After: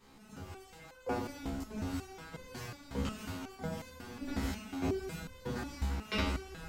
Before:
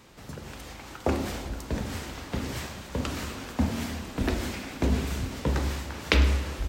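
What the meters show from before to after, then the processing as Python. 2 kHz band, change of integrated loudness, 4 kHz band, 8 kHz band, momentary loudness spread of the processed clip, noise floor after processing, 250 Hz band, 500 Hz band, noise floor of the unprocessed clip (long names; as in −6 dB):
−9.5 dB, −9.5 dB, −10.0 dB, −10.0 dB, 13 LU, −57 dBFS, −7.5 dB, −7.0 dB, −45 dBFS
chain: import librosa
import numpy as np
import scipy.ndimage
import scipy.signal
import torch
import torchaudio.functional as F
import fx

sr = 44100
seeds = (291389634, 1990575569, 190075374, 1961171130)

y = fx.room_shoebox(x, sr, seeds[0], volume_m3=30.0, walls='mixed', distance_m=0.91)
y = fx.resonator_held(y, sr, hz=5.5, low_hz=68.0, high_hz=510.0)
y = F.gain(torch.from_numpy(y), -3.5).numpy()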